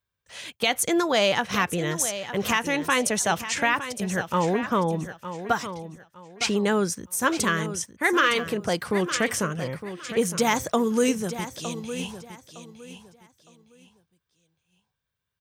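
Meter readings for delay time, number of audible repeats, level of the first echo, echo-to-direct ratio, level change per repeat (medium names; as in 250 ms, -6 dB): 911 ms, 3, -11.5 dB, -11.0 dB, -11.5 dB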